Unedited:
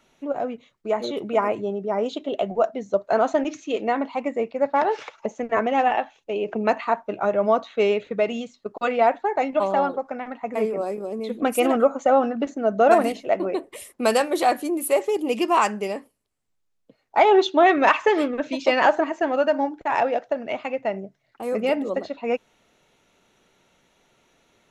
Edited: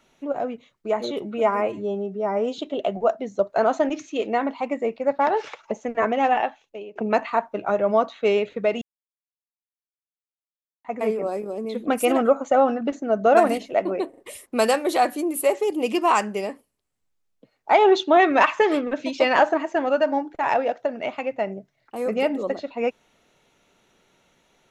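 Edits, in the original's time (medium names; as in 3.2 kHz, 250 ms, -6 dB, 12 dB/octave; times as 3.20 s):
1.22–2.13 s: stretch 1.5×
5.97–6.50 s: fade out, to -22.5 dB
8.36–10.39 s: mute
13.64 s: stutter 0.04 s, 3 plays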